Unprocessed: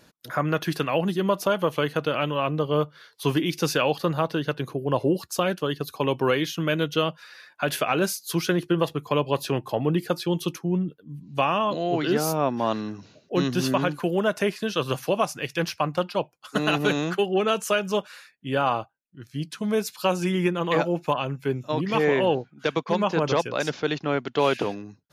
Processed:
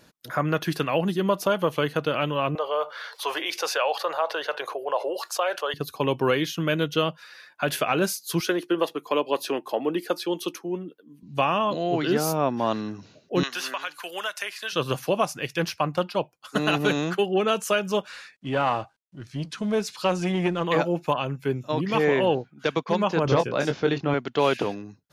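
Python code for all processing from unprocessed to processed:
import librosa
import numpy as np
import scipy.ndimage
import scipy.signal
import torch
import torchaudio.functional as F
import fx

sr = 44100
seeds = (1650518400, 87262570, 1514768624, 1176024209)

y = fx.chain(x, sr, fx.cheby2_highpass(hz=230.0, order=4, stop_db=50),
    fx.tilt_eq(slope=-3.0),
    fx.env_flatten(amount_pct=50), at=(2.55, 5.74))
y = fx.chain(y, sr, fx.highpass(hz=260.0, slope=24),
    fx.notch(hz=7400.0, q=22.0), at=(8.4, 11.23))
y = fx.chain(y, sr, fx.highpass(hz=1300.0, slope=12),
    fx.band_squash(depth_pct=100), at=(13.43, 14.73))
y = fx.chain(y, sr, fx.law_mismatch(coded='mu'),
    fx.lowpass(hz=7500.0, slope=12),
    fx.transformer_sat(knee_hz=510.0), at=(18.07, 20.64))
y = fx.chain(y, sr, fx.tilt_eq(slope=-1.5),
    fx.doubler(ms=22.0, db=-6.5), at=(23.25, 24.14))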